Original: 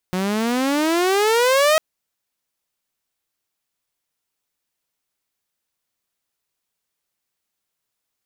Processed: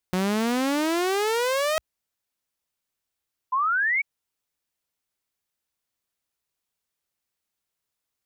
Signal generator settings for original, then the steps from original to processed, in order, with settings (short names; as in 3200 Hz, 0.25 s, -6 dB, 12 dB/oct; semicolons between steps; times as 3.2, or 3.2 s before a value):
gliding synth tone saw, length 1.65 s, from 180 Hz, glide +22 st, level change +7.5 dB, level -10 dB
bell 60 Hz +6 dB 0.93 oct; level quantiser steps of 12 dB; painted sound rise, 3.52–4.02, 1000–2300 Hz -23 dBFS